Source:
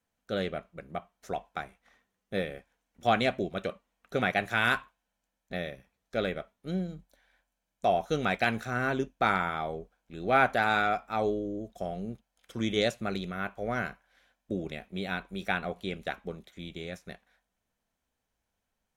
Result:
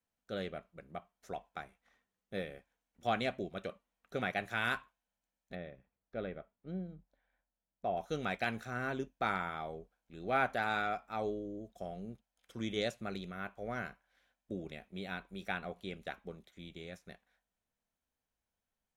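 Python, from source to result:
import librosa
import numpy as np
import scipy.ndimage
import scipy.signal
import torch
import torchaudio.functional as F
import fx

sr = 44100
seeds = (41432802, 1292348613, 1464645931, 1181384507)

y = fx.spacing_loss(x, sr, db_at_10k=32, at=(5.55, 7.97))
y = F.gain(torch.from_numpy(y), -8.0).numpy()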